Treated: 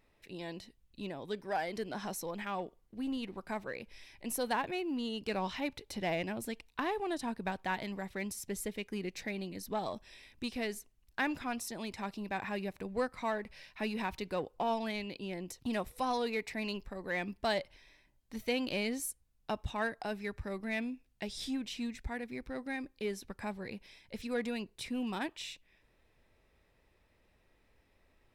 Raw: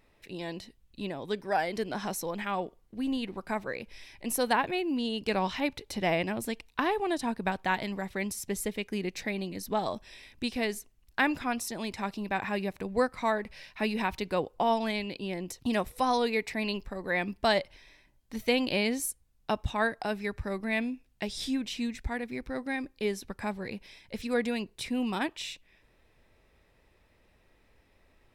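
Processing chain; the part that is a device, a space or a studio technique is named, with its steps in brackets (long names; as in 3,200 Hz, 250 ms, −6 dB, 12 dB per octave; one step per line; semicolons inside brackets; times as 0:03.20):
parallel distortion (in parallel at −6.5 dB: hard clipping −28.5 dBFS, distortion −8 dB)
on the sum: level −8.5 dB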